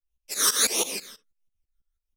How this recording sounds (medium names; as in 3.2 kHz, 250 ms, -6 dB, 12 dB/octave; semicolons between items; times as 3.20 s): phasing stages 12, 1.5 Hz, lowest notch 750–1600 Hz; tremolo saw up 6.1 Hz, depth 95%; a shimmering, thickened sound